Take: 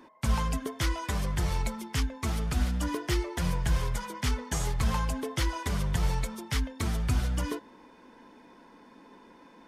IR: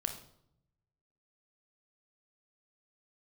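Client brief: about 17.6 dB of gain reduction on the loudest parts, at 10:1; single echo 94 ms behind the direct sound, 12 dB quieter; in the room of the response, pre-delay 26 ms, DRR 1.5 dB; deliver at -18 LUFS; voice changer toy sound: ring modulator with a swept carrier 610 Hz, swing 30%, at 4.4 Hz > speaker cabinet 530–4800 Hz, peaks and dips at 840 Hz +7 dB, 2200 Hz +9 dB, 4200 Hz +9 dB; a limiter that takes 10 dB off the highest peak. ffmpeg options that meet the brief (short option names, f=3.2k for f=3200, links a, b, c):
-filter_complex "[0:a]acompressor=threshold=-40dB:ratio=10,alimiter=level_in=11.5dB:limit=-24dB:level=0:latency=1,volume=-11.5dB,aecho=1:1:94:0.251,asplit=2[a][b];[1:a]atrim=start_sample=2205,adelay=26[c];[b][c]afir=irnorm=-1:irlink=0,volume=-2.5dB[d];[a][d]amix=inputs=2:normalize=0,aeval=exprs='val(0)*sin(2*PI*610*n/s+610*0.3/4.4*sin(2*PI*4.4*n/s))':c=same,highpass=530,equalizer=f=840:t=q:w=4:g=7,equalizer=f=2.2k:t=q:w=4:g=9,equalizer=f=4.2k:t=q:w=4:g=9,lowpass=f=4.8k:w=0.5412,lowpass=f=4.8k:w=1.3066,volume=25.5dB"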